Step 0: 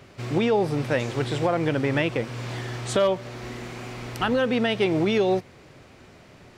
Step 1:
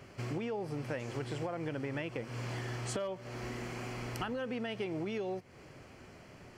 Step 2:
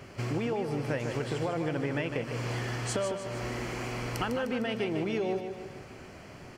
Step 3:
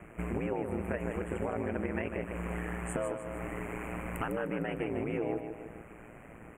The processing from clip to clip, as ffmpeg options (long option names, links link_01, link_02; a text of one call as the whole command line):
ffmpeg -i in.wav -af "bandreject=frequency=3700:width=5.3,acompressor=threshold=-31dB:ratio=6,volume=-4dB" out.wav
ffmpeg -i in.wav -af "aecho=1:1:152|304|456|608|760|912:0.422|0.215|0.11|0.0559|0.0285|0.0145,volume=5.5dB" out.wav
ffmpeg -i in.wav -af "asuperstop=centerf=4600:order=8:qfactor=0.87,aeval=exprs='val(0)*sin(2*PI*57*n/s)':channel_layout=same" out.wav